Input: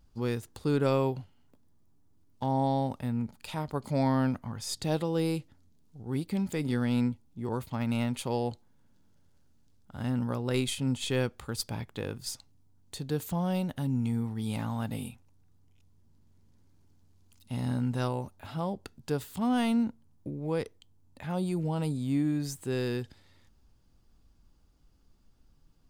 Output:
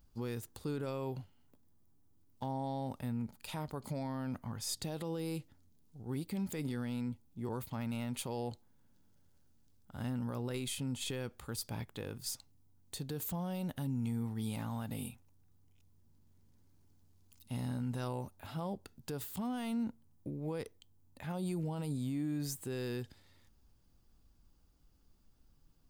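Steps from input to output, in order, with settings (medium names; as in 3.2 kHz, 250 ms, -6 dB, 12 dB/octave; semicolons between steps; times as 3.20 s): peak limiter -25.5 dBFS, peak gain reduction 11 dB; treble shelf 12 kHz +12 dB; trim -4 dB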